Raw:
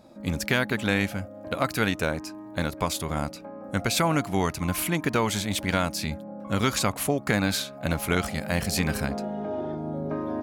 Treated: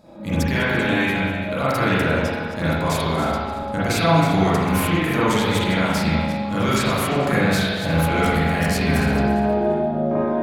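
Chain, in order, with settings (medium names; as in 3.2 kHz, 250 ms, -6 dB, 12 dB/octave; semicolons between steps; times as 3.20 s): backward echo that repeats 171 ms, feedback 46%, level -11 dB; peak limiter -17.5 dBFS, peak gain reduction 7.5 dB; spring tank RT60 1.3 s, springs 37/43 ms, chirp 40 ms, DRR -9.5 dB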